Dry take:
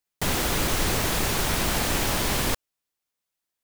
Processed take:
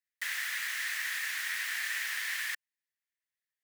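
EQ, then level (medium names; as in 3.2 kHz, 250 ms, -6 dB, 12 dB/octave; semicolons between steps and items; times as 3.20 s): ladder high-pass 1.7 kHz, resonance 75%; 0.0 dB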